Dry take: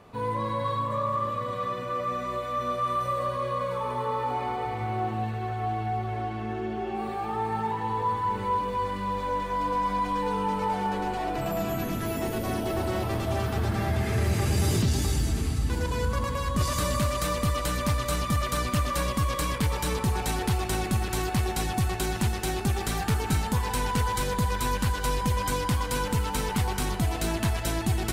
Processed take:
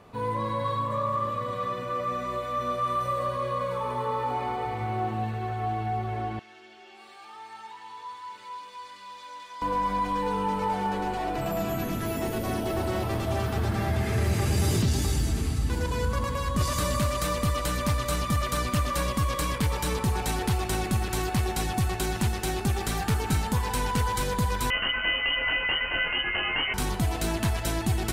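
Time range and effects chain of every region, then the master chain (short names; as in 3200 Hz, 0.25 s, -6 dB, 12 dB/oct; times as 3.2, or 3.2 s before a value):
6.39–9.62 band-pass 5000 Hz, Q 1 + comb 3.2 ms, depth 37%
24.7–26.74 tilt shelf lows -6.5 dB, about 760 Hz + doubler 25 ms -5.5 dB + inverted band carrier 3000 Hz
whole clip: dry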